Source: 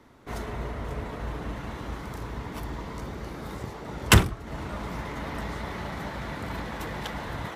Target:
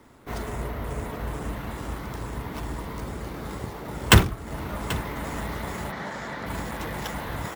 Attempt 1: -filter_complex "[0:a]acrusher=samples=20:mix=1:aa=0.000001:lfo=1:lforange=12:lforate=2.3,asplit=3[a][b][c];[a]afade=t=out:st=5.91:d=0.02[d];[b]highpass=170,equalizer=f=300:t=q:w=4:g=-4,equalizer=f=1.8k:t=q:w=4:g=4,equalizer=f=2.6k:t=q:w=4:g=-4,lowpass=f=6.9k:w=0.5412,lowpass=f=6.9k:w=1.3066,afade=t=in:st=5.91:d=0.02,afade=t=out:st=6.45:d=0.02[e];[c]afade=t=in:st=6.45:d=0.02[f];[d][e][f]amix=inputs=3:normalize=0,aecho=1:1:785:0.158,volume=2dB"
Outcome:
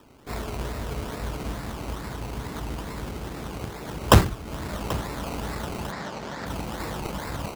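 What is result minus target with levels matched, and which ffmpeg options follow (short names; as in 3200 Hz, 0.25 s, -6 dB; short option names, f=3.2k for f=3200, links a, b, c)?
decimation with a swept rate: distortion +9 dB
-filter_complex "[0:a]acrusher=samples=4:mix=1:aa=0.000001:lfo=1:lforange=2.4:lforate=2.3,asplit=3[a][b][c];[a]afade=t=out:st=5.91:d=0.02[d];[b]highpass=170,equalizer=f=300:t=q:w=4:g=-4,equalizer=f=1.8k:t=q:w=4:g=4,equalizer=f=2.6k:t=q:w=4:g=-4,lowpass=f=6.9k:w=0.5412,lowpass=f=6.9k:w=1.3066,afade=t=in:st=5.91:d=0.02,afade=t=out:st=6.45:d=0.02[e];[c]afade=t=in:st=6.45:d=0.02[f];[d][e][f]amix=inputs=3:normalize=0,aecho=1:1:785:0.158,volume=2dB"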